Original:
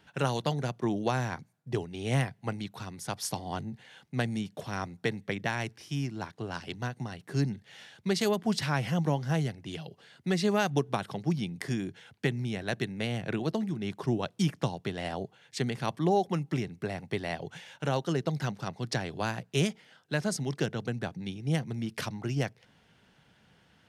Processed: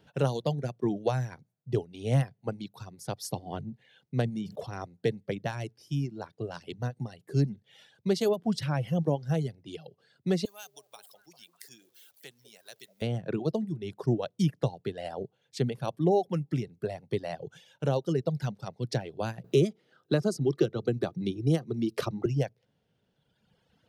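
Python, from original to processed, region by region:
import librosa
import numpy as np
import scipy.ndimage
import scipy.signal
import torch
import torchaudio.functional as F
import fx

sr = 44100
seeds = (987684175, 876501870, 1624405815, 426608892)

y = fx.chain(x, sr, fx.high_shelf(hz=6000.0, db=-6.0),
    fx.sustainer(db_per_s=59.0), at=(4.21, 4.81))
y = fx.chain(y, sr, fx.zero_step(step_db=-42.5),
    fx.differentiator(),
    fx.echo_stepped(ms=199, hz=490.0, octaves=0.7, feedback_pct=70, wet_db=-6.5), at=(10.45, 13.02))
y = fx.chain(y, sr, fx.small_body(hz=(350.0, 1200.0, 3900.0), ring_ms=30, db=10),
    fx.band_squash(depth_pct=70), at=(19.44, 22.26))
y = fx.dereverb_blind(y, sr, rt60_s=1.9)
y = fx.graphic_eq_10(y, sr, hz=(125, 500, 1000, 2000, 8000), db=(5, 7, -4, -6, -4))
y = y * librosa.db_to_amplitude(-1.0)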